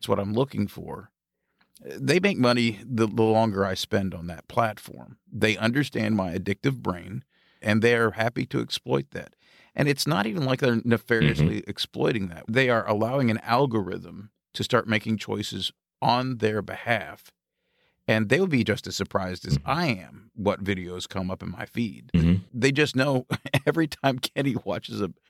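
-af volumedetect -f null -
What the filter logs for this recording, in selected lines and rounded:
mean_volume: -25.7 dB
max_volume: -6.5 dB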